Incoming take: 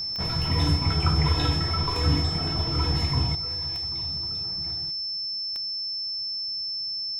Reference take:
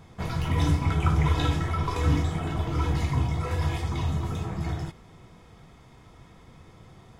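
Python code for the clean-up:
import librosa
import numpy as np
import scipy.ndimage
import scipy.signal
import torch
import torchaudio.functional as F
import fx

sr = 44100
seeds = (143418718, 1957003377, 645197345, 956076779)

y = fx.fix_declick_ar(x, sr, threshold=10.0)
y = fx.notch(y, sr, hz=5300.0, q=30.0)
y = fx.fix_echo_inverse(y, sr, delay_ms=270, level_db=-23.0)
y = fx.gain(y, sr, db=fx.steps((0.0, 0.0), (3.35, 12.0)))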